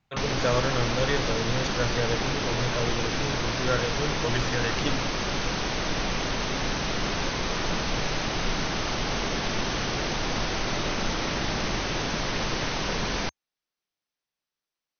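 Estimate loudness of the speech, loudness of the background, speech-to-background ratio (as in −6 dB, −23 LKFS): −30.5 LKFS, −28.0 LKFS, −2.5 dB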